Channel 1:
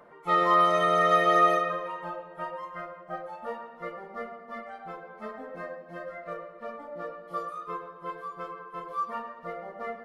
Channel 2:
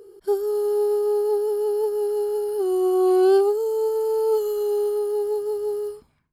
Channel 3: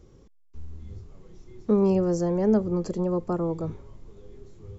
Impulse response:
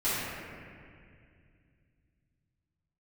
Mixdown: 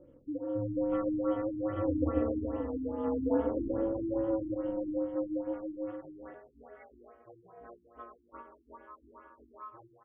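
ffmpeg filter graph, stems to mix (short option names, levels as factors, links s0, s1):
-filter_complex "[0:a]adelay=650,volume=0.335[s0];[1:a]lowshelf=f=340:t=q:w=1.5:g=-6.5,flanger=delay=4:depth=3.4:regen=-61:speed=1.7:shape=sinusoidal,volume=0.501,asplit=2[s1][s2];[s2]volume=0.15[s3];[2:a]flanger=delay=7.3:depth=3.4:regen=-69:speed=0.82:shape=triangular,volume=0.282,asplit=3[s4][s5][s6];[s4]atrim=end=2.35,asetpts=PTS-STARTPTS,afade=t=out:st=2.346:d=0.004:c=hsin[s7];[s5]atrim=start=2.35:end=3.07,asetpts=PTS-STARTPTS,volume=0[s8];[s6]atrim=start=3.07,asetpts=PTS-STARTPTS,afade=t=in:d=0.004:c=hsin[s9];[s7][s8][s9]concat=n=3:v=0:a=1,asplit=2[s10][s11];[s11]volume=0.473[s12];[s0][s10]amix=inputs=2:normalize=0,acompressor=threshold=0.01:ratio=3,volume=1[s13];[3:a]atrim=start_sample=2205[s14];[s3][s12]amix=inputs=2:normalize=0[s15];[s15][s14]afir=irnorm=-1:irlink=0[s16];[s1][s13][s16]amix=inputs=3:normalize=0,aeval=exprs='val(0)*sin(2*PI*110*n/s)':c=same,afftfilt=real='re*lt(b*sr/1024,370*pow(3600/370,0.5+0.5*sin(2*PI*2.4*pts/sr)))':imag='im*lt(b*sr/1024,370*pow(3600/370,0.5+0.5*sin(2*PI*2.4*pts/sr)))':win_size=1024:overlap=0.75"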